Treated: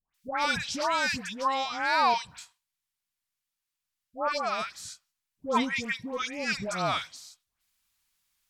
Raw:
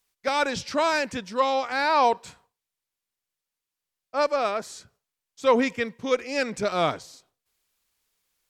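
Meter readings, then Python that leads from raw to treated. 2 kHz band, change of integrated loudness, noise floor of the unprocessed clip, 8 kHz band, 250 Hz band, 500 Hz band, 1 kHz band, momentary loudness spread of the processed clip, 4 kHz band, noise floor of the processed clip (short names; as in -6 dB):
-1.0 dB, -4.0 dB, under -85 dBFS, 0.0 dB, -5.0 dB, -9.5 dB, -3.0 dB, 17 LU, 0.0 dB, under -85 dBFS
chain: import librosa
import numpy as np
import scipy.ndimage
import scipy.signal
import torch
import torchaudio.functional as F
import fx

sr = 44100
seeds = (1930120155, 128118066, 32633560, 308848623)

y = fx.peak_eq(x, sr, hz=440.0, db=-14.0, octaves=1.1)
y = fx.dispersion(y, sr, late='highs', ms=145.0, hz=1300.0)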